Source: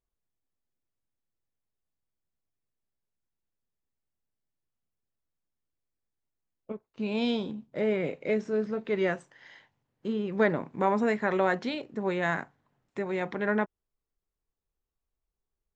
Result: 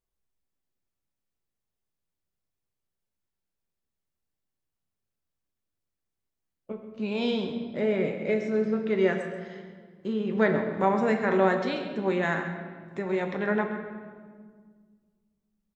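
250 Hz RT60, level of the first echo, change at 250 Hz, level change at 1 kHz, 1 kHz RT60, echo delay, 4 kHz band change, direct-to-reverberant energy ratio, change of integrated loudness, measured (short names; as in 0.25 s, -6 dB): 2.5 s, -13.0 dB, +3.0 dB, +2.0 dB, 1.6 s, 0.133 s, +1.5 dB, 3.5 dB, +2.5 dB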